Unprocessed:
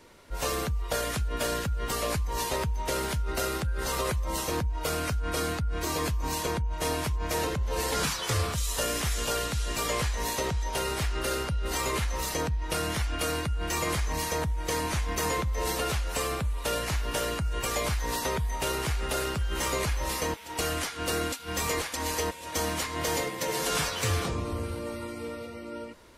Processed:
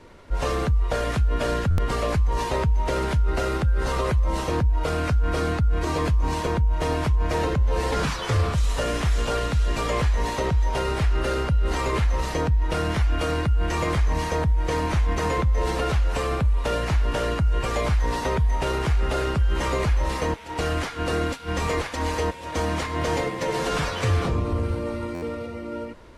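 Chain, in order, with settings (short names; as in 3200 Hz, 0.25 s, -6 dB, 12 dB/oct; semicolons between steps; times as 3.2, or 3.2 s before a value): CVSD 64 kbps; LPF 1900 Hz 6 dB/oct; low shelf 100 Hz +6 dB; in parallel at +1 dB: limiter -23 dBFS, peak gain reduction 6.5 dB; on the sum: stuck buffer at 1.7/25.14, samples 512, times 6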